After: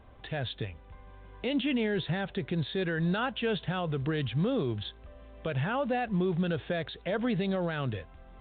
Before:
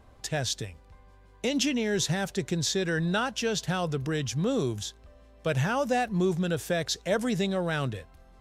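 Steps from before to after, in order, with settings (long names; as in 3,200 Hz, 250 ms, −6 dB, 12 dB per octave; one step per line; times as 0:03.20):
camcorder AGC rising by 7.7 dB per second
brickwall limiter −21.5 dBFS, peak gain reduction 8 dB
mu-law 64 kbit/s 8,000 Hz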